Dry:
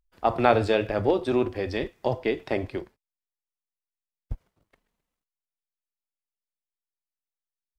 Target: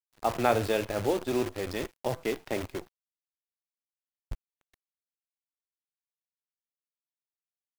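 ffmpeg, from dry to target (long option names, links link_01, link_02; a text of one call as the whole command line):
ffmpeg -i in.wav -af "acrusher=bits=6:dc=4:mix=0:aa=0.000001,volume=-5dB" out.wav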